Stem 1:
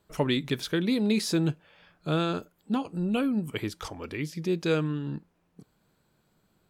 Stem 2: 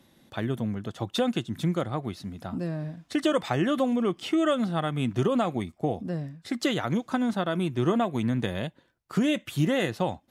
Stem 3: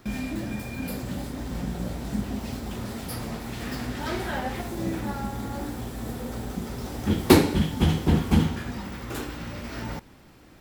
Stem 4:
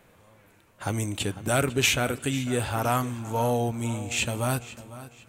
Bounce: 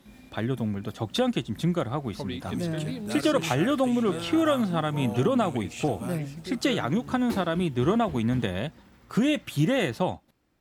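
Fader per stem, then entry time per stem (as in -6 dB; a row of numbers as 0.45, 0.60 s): -10.0, +1.0, -19.5, -12.0 dB; 2.00, 0.00, 0.00, 1.60 s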